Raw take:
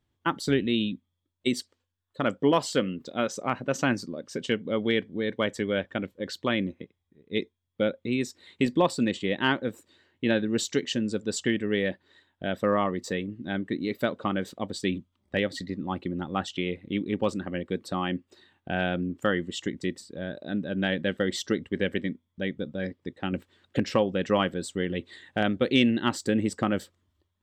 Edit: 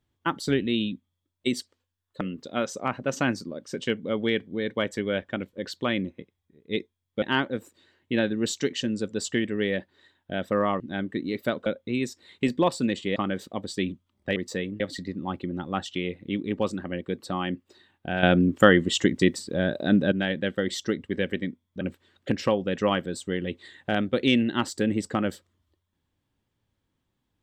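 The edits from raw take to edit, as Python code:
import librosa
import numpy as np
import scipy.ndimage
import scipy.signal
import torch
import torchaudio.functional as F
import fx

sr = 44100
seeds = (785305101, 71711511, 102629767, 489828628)

y = fx.edit(x, sr, fx.cut(start_s=2.21, length_s=0.62),
    fx.move(start_s=7.84, length_s=1.5, to_s=14.22),
    fx.move(start_s=12.92, length_s=0.44, to_s=15.42),
    fx.clip_gain(start_s=18.85, length_s=1.89, db=9.5),
    fx.cut(start_s=22.43, length_s=0.86), tone=tone)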